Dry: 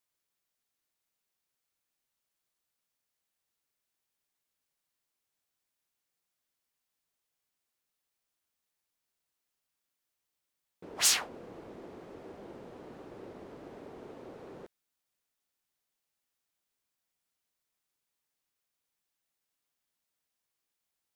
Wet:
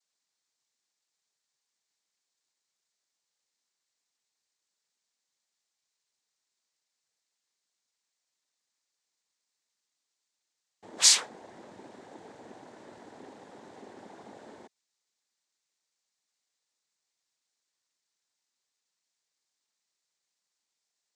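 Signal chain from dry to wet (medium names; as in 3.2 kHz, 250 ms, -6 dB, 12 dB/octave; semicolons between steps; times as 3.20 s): tone controls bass -8 dB, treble +9 dB; noise-vocoded speech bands 6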